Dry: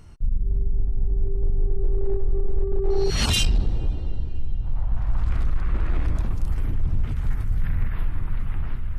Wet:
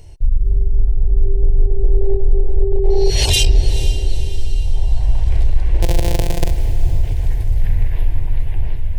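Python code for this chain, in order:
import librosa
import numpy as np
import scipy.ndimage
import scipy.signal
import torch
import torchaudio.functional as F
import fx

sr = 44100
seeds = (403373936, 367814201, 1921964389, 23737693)

y = fx.sample_sort(x, sr, block=256, at=(5.82, 6.51))
y = fx.fixed_phaser(y, sr, hz=530.0, stages=4)
y = fx.echo_diffused(y, sr, ms=471, feedback_pct=50, wet_db=-13.0)
y = y * 10.0 ** (8.5 / 20.0)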